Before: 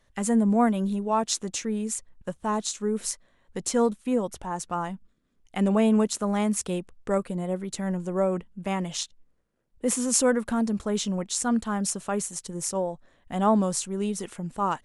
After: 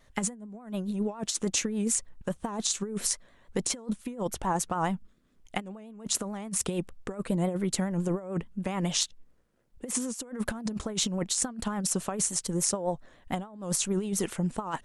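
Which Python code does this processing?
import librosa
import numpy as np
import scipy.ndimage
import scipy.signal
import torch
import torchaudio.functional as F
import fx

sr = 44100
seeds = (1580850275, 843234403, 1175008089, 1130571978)

y = fx.over_compress(x, sr, threshold_db=-30.0, ratio=-0.5)
y = fx.vibrato(y, sr, rate_hz=7.0, depth_cents=82.0)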